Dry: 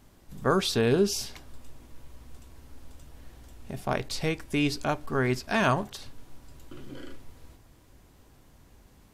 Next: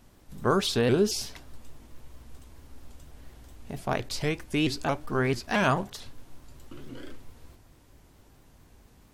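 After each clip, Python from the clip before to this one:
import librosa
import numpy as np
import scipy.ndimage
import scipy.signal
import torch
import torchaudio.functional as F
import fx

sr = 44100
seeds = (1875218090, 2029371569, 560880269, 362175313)

y = fx.vibrato_shape(x, sr, shape='saw_up', rate_hz=4.5, depth_cents=160.0)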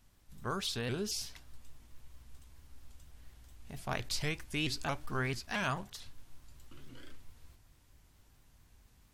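y = fx.peak_eq(x, sr, hz=400.0, db=-9.5, octaves=2.7)
y = fx.rider(y, sr, range_db=10, speed_s=0.5)
y = F.gain(torch.from_numpy(y), -3.5).numpy()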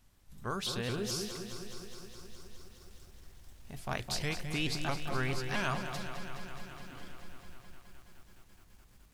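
y = fx.echo_bbd(x, sr, ms=214, stages=1024, feedback_pct=52, wet_db=-6.0)
y = fx.echo_crushed(y, sr, ms=209, feedback_pct=80, bits=10, wet_db=-10)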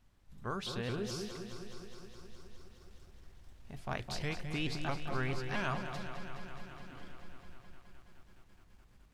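y = fx.lowpass(x, sr, hz=3100.0, slope=6)
y = F.gain(torch.from_numpy(y), -1.5).numpy()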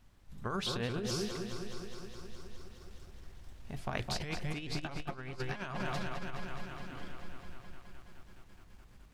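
y = fx.over_compress(x, sr, threshold_db=-38.0, ratio=-0.5)
y = F.gain(torch.from_numpy(y), 3.0).numpy()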